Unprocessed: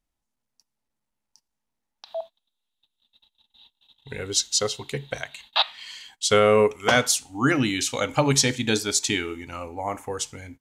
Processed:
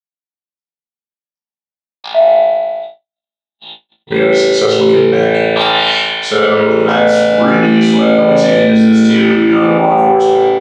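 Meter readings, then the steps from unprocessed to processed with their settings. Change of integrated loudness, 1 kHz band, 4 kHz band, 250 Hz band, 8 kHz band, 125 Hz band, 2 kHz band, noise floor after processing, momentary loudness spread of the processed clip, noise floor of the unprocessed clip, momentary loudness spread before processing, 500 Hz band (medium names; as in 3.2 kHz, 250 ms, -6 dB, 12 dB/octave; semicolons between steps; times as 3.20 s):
+13.0 dB, +15.5 dB, +9.0 dB, +18.0 dB, -6.0 dB, +9.0 dB, +11.5 dB, under -85 dBFS, 5 LU, -82 dBFS, 17 LU, +16.0 dB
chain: fade out at the end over 1.65 s; reverse; compression 6:1, threshold -34 dBFS, peak gain reduction 19 dB; reverse; saturation -31 dBFS, distortion -14 dB; comb 5.1 ms, depth 46%; on a send: flutter echo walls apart 3.1 m, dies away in 0.55 s; on the sum: dynamic bell 1.9 kHz, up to -4 dB, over -50 dBFS, Q 1.5; high-pass 150 Hz 24 dB/octave; spring tank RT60 1.8 s, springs 36 ms, chirp 30 ms, DRR -3.5 dB; gate -47 dBFS, range -60 dB; low-pass 2.8 kHz 12 dB/octave; loudness maximiser +26 dB; trim -1 dB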